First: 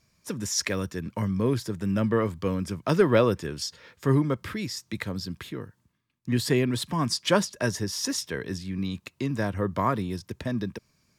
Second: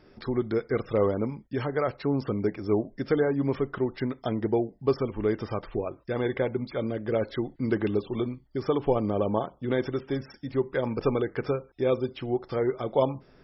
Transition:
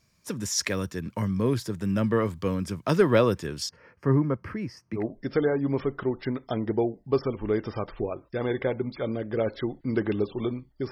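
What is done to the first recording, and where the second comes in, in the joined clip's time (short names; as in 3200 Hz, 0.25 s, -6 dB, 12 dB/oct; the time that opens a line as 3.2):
first
3.69–5.06 running mean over 12 samples
5 switch to second from 2.75 s, crossfade 0.12 s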